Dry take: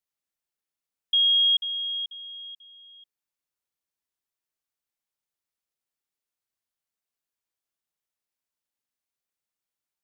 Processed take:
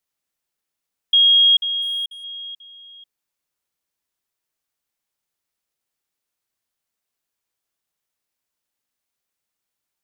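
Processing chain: 1.82–2.24 G.711 law mismatch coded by A; gain +7 dB

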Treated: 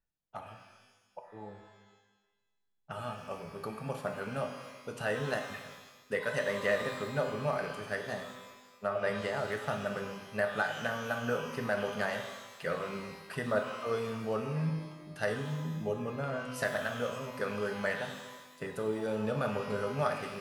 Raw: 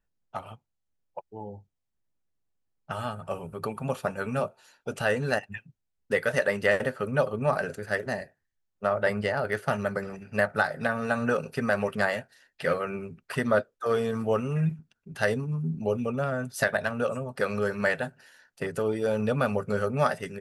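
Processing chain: shimmer reverb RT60 1.2 s, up +12 st, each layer -8 dB, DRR 4.5 dB; gain -8 dB

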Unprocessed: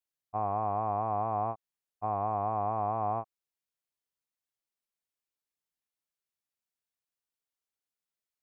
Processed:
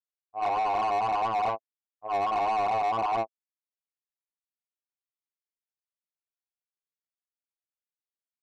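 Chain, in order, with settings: spectral noise reduction 29 dB; chorus 1.6 Hz, delay 17 ms, depth 2.8 ms; overdrive pedal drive 24 dB, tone 2100 Hz, clips at -23.5 dBFS; gain +4 dB

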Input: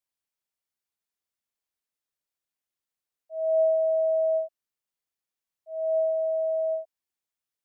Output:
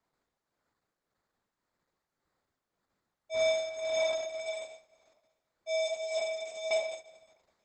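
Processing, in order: 3.34–4.4 level-crossing sampler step -46.5 dBFS; in parallel at -0.5 dB: compressor 16:1, threshold -32 dBFS, peak gain reduction 13 dB; 6.19–6.71 on the sum: notch 660 Hz, Q 15; limiter -21 dBFS, peak gain reduction 5.5 dB; shoebox room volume 270 m³, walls mixed, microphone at 0.44 m; tremolo triangle 1.8 Hz, depth 75%; on a send: multi-head echo 0.111 s, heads first and second, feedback 44%, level -23 dB; on the sum: sample-and-hold 15×; gain +2.5 dB; Opus 10 kbps 48000 Hz

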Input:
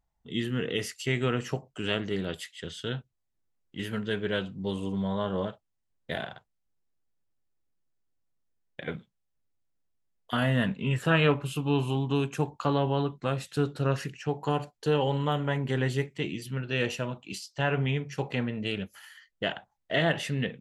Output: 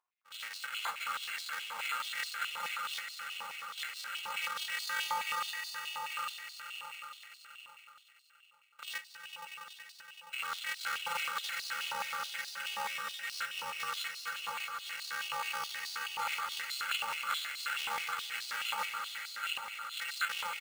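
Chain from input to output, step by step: FFT order left unsorted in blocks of 128 samples; gate -43 dBFS, range -10 dB; comb 5.8 ms, depth 75%; reverse; compressor, threshold -31 dBFS, peak gain reduction 14.5 dB; reverse; limiter -28.5 dBFS, peak gain reduction 9.5 dB; on a send: swelling echo 94 ms, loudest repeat 5, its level -10.5 dB; on the sum: careless resampling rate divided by 8×, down filtered, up hold; stepped high-pass 9.4 Hz 1000–4300 Hz; gain +8 dB

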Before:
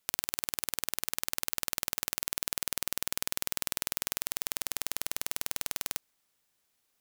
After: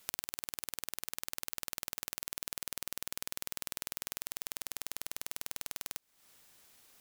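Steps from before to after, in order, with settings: compressor 16:1, threshold -45 dBFS, peak gain reduction 20.5 dB; gain +13.5 dB

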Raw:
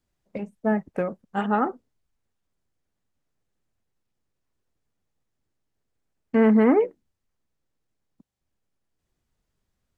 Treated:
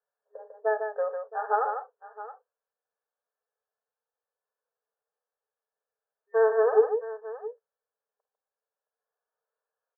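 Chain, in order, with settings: FFT band-pass 410–1800 Hz; short-mantissa float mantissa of 8-bit; tapped delay 51/149/669 ms -16/-6.5/-15 dB; harmonic-percussive split percussive -9 dB

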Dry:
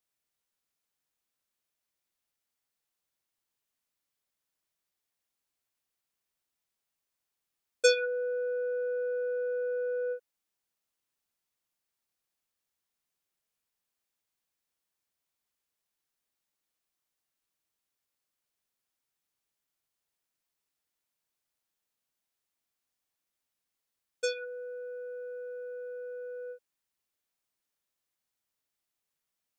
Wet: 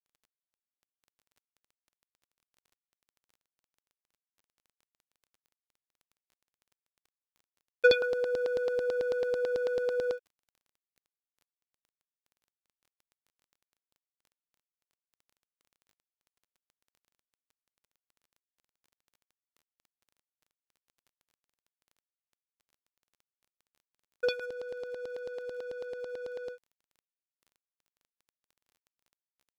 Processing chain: LFO low-pass saw down 9.1 Hz 560–4500 Hz; crossover distortion -55 dBFS; crackle 15/s -51 dBFS

